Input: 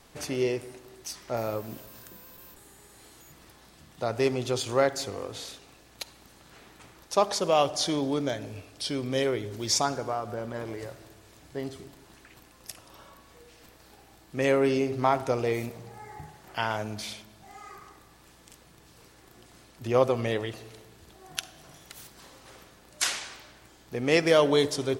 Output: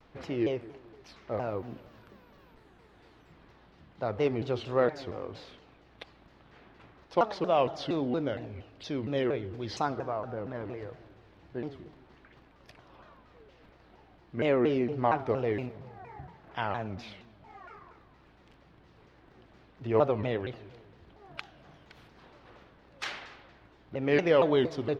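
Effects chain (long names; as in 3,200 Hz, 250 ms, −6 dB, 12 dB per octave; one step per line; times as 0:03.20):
high-frequency loss of the air 320 metres
pitch modulation by a square or saw wave saw down 4.3 Hz, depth 250 cents
level −1.5 dB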